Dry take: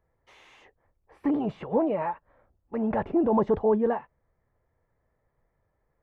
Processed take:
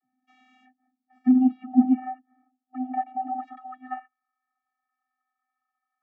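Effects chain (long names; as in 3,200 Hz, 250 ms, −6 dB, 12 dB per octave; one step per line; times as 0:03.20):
channel vocoder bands 32, square 255 Hz
high-pass filter sweep 130 Hz → 1,200 Hz, 0:01.53–0:03.59
0:01.33–0:03.43: high-frequency loss of the air 190 metres
level +3.5 dB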